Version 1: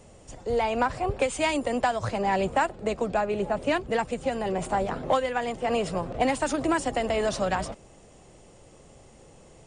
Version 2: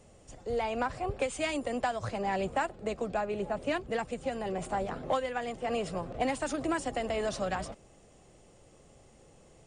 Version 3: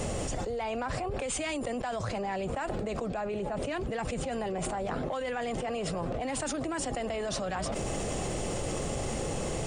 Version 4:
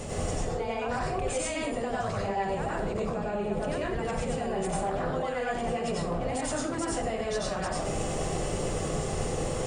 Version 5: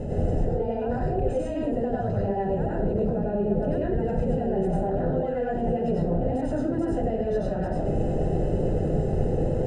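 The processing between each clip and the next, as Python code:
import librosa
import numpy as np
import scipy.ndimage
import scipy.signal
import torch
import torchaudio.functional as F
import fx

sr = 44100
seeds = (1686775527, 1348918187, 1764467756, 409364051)

y1 = fx.notch(x, sr, hz=940.0, q=16.0)
y1 = y1 * 10.0 ** (-6.0 / 20.0)
y2 = fx.env_flatten(y1, sr, amount_pct=100)
y2 = y2 * 10.0 ** (-7.0 / 20.0)
y3 = fx.rev_plate(y2, sr, seeds[0], rt60_s=0.56, hf_ratio=0.6, predelay_ms=80, drr_db=-5.5)
y3 = y3 * 10.0 ** (-4.5 / 20.0)
y4 = np.convolve(y3, np.full(39, 1.0 / 39))[:len(y3)]
y4 = y4 * 10.0 ** (8.0 / 20.0)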